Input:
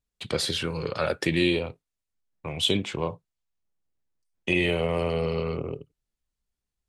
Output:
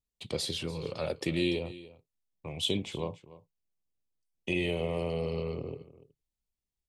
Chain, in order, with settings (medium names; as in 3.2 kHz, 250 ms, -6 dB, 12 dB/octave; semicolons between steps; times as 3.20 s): peaking EQ 1.5 kHz -12.5 dB 0.74 oct; on a send: delay 291 ms -17.5 dB; on the sum: trim -5.5 dB